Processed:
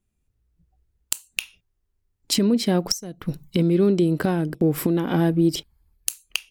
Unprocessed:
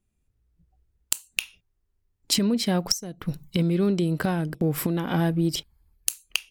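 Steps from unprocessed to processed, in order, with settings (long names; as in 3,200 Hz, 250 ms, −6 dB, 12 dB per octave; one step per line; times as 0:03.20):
dynamic equaliser 340 Hz, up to +7 dB, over −37 dBFS, Q 1.1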